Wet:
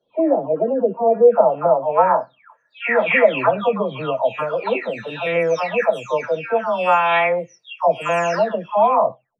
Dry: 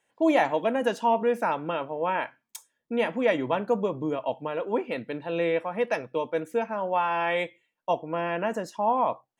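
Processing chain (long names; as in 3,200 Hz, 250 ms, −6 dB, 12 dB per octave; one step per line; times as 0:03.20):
every frequency bin delayed by itself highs early, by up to 527 ms
thirty-one-band graphic EQ 315 Hz −11 dB, 630 Hz +7 dB, 1,250 Hz +8 dB, 2,500 Hz +6 dB, 8,000 Hz −6 dB
low-pass filter sweep 380 Hz → 6,700 Hz, 0:00.84–0:04.48
level +7 dB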